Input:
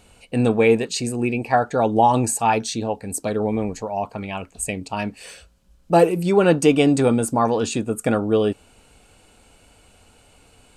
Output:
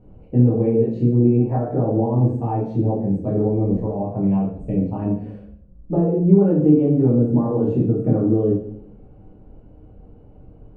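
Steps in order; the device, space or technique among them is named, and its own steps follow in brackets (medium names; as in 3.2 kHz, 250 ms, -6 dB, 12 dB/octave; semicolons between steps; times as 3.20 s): television next door (compression 4:1, threshold -23 dBFS, peak gain reduction 12 dB; low-pass 390 Hz 12 dB/octave; reverberation RT60 0.60 s, pre-delay 9 ms, DRR -7 dB); trim +2.5 dB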